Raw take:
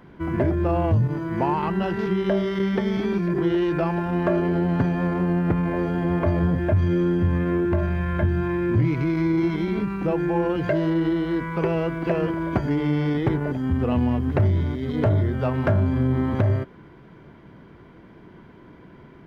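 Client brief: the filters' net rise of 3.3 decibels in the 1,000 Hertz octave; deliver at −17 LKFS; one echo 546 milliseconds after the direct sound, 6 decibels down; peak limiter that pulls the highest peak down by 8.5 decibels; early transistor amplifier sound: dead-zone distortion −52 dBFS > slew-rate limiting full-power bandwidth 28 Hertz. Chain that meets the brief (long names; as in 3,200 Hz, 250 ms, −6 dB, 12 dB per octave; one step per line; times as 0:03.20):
parametric band 1,000 Hz +4 dB
brickwall limiter −18 dBFS
single-tap delay 546 ms −6 dB
dead-zone distortion −52 dBFS
slew-rate limiting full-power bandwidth 28 Hz
level +9 dB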